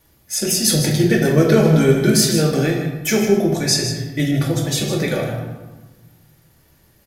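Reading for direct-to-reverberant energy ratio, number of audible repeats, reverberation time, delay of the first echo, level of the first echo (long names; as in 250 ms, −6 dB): −1.5 dB, 1, 1.2 s, 154 ms, −8.5 dB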